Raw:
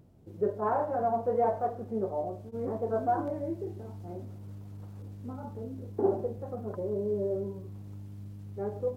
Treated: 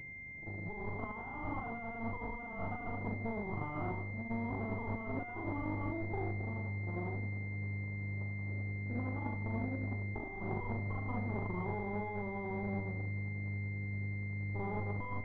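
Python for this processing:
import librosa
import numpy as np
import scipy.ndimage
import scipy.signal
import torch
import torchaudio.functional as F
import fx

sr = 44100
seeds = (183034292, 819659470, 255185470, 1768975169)

y = fx.lower_of_two(x, sr, delay_ms=0.93)
y = fx.stretch_grains(y, sr, factor=1.7, grain_ms=191.0)
y = fx.over_compress(y, sr, threshold_db=-39.0, ratio=-1.0)
y = fx.pwm(y, sr, carrier_hz=2100.0)
y = y * 10.0 ** (1.5 / 20.0)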